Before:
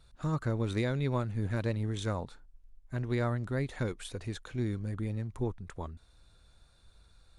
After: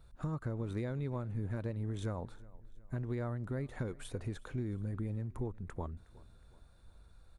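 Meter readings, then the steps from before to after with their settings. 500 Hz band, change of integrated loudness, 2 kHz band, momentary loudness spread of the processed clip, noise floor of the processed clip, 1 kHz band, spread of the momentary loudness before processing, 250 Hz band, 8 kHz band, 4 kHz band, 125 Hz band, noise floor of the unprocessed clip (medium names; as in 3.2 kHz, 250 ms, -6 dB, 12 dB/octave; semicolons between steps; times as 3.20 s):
-6.0 dB, -5.5 dB, -9.0 dB, 6 LU, -60 dBFS, -7.5 dB, 10 LU, -5.0 dB, -7.5 dB, -11.5 dB, -4.5 dB, -62 dBFS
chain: peaking EQ 4.6 kHz -10.5 dB 2.5 oct; compression, threshold -36 dBFS, peak gain reduction 10 dB; feedback delay 366 ms, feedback 48%, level -22 dB; trim +2 dB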